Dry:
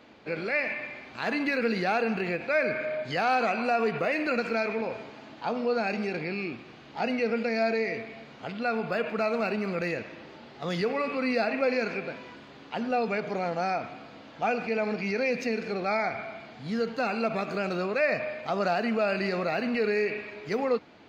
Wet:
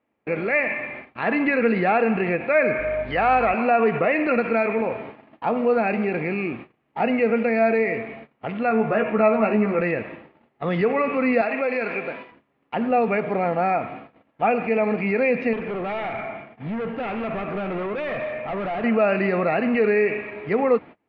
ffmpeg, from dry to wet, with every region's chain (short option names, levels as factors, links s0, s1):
-filter_complex "[0:a]asettb=1/sr,asplit=3[s0][s1][s2];[s0]atrim=end=2.794[s3];[s1]atrim=start=2.79:end=3.54,asetpts=PTS-STARTPTS,afade=t=in:d=0.004:c=qsin,afade=t=out:st=0.746:d=0.004:c=qsin,lowshelf=f=190:g=-8.5,aeval=exprs='val(0)+0.00562*(sin(2*PI*50*n/s)+sin(2*PI*2*50*n/s)/2+sin(2*PI*3*50*n/s)/3+sin(2*PI*4*50*n/s)/4+sin(2*PI*5*50*n/s)/5)':c=same[s4];[s2]atrim=start=3.536[s5];[s3][s4]acrossfade=d=0.004:c1=hsin:c2=qsin[s6];[s6][s5]acrossfade=d=0.004:c1=qsin:c2=hsin,asettb=1/sr,asplit=3[s7][s8][s9];[s7]atrim=end=8.694[s10];[s8]atrim=start=8.69:end=9.81,asetpts=PTS-STARTPTS,afade=t=in:d=0.004:c=qsin,afade=t=out:st=1.116:d=0.004:c=qsin,highshelf=f=4700:g=-12,asplit=2[s11][s12];[s12]adelay=14,volume=0.668[s13];[s11][s13]amix=inputs=2:normalize=0,atrim=end_sample=49392[s14];[s9]atrim=start=9.806[s15];[s10][s14]acrossfade=d=0.004:c1=hsin:c2=qsin[s16];[s16][s15]acrossfade=d=0.004:c1=qsin:c2=hsin,asettb=1/sr,asplit=3[s17][s18][s19];[s17]atrim=end=11.414[s20];[s18]atrim=start=11.41:end=12.32,asetpts=PTS-STARTPTS,afade=t=in:d=0.004:c=qsin,afade=t=out:st=0.906:d=0.004:c=qsin,acompressor=threshold=0.0447:ratio=2.5:attack=3.2:release=140:knee=1:detection=peak,aemphasis=mode=production:type=bsi[s21];[s19]atrim=start=12.316[s22];[s20][s21]acrossfade=d=0.004:c1=hsin:c2=qsin[s23];[s23][s22]acrossfade=d=0.004:c1=qsin:c2=hsin,asettb=1/sr,asplit=3[s24][s25][s26];[s24]atrim=end=15.534[s27];[s25]atrim=start=15.53:end=18.84,asetpts=PTS-STARTPTS,afade=t=in:d=0.004:c=qsin,afade=t=out:st=3.306:d=0.004:c=qsin,equalizer=f=4200:t=o:w=0.28:g=-8.5,volume=44.7,asoftclip=hard,volume=0.0224,aecho=1:1:205:0.2,atrim=end_sample=145971[s28];[s26]atrim=start=18.836[s29];[s27][s28]acrossfade=d=0.004:c1=hsin:c2=qsin[s30];[s30][s29]acrossfade=d=0.004:c1=qsin:c2=hsin,lowpass=f=2500:w=0.5412,lowpass=f=2500:w=1.3066,bandreject=f=1500:w=11,agate=range=0.0398:threshold=0.00631:ratio=16:detection=peak,volume=2.37"